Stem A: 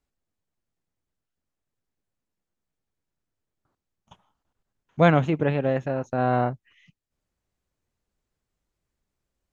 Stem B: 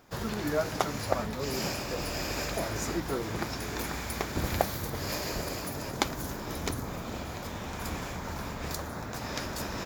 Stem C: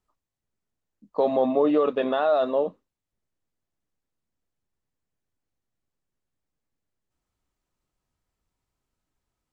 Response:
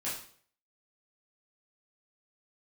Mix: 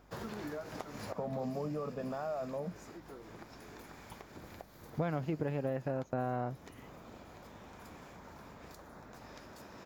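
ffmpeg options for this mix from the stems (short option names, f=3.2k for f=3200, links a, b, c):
-filter_complex "[0:a]acompressor=threshold=-22dB:ratio=6,aeval=exprs='val(0)+0.000631*(sin(2*PI*50*n/s)+sin(2*PI*2*50*n/s)/2+sin(2*PI*3*50*n/s)/3+sin(2*PI*4*50*n/s)/4+sin(2*PI*5*50*n/s)/5)':c=same,volume=0.5dB[a];[1:a]highpass=f=180:p=1,acompressor=threshold=-34dB:ratio=6,volume=-2.5dB,afade=t=out:st=1.03:d=0.65:silence=0.354813[b];[2:a]lowpass=1.9k,lowshelf=f=230:t=q:w=3:g=12,volume=-9dB[c];[a][b][c]amix=inputs=3:normalize=0,highshelf=f=2.2k:g=-7.5,acompressor=threshold=-38dB:ratio=2"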